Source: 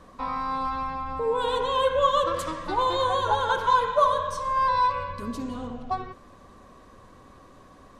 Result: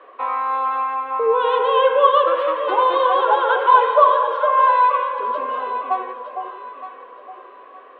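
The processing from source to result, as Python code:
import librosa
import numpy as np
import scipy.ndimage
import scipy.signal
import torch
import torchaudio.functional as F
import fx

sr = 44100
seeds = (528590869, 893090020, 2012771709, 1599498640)

y = scipy.signal.sosfilt(scipy.signal.ellip(3, 1.0, 40, [400.0, 2900.0], 'bandpass', fs=sr, output='sos'), x)
y = fx.notch(y, sr, hz=910.0, q=15.0)
y = fx.echo_alternate(y, sr, ms=458, hz=870.0, feedback_pct=56, wet_db=-5.0)
y = y * librosa.db_to_amplitude(8.0)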